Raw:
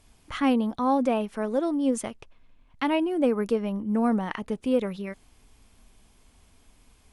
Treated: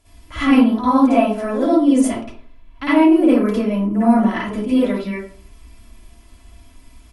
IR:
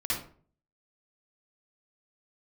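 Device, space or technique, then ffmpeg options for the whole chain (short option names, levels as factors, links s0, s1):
microphone above a desk: -filter_complex "[0:a]aecho=1:1:3:0.5[s0];[1:a]atrim=start_sample=2205[s1];[s0][s1]afir=irnorm=-1:irlink=0,volume=1.26"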